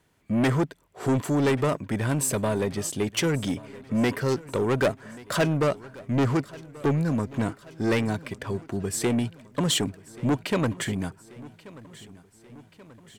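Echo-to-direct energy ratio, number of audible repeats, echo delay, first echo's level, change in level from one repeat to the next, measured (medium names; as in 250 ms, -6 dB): -18.5 dB, 4, 1133 ms, -20.5 dB, -4.5 dB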